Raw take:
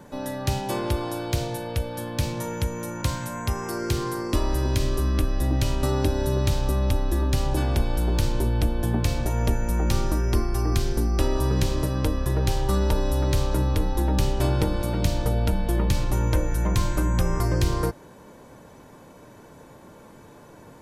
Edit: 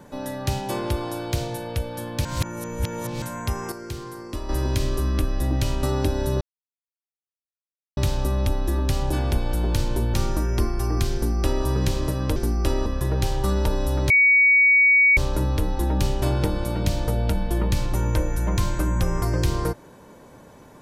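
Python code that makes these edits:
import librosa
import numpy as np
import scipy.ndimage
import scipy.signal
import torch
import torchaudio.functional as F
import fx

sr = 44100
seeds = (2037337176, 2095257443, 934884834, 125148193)

y = fx.edit(x, sr, fx.reverse_span(start_s=2.25, length_s=0.97),
    fx.clip_gain(start_s=3.72, length_s=0.77, db=-8.0),
    fx.insert_silence(at_s=6.41, length_s=1.56),
    fx.cut(start_s=8.58, length_s=1.31),
    fx.duplicate(start_s=10.9, length_s=0.5, to_s=12.11),
    fx.insert_tone(at_s=13.35, length_s=1.07, hz=2250.0, db=-12.5), tone=tone)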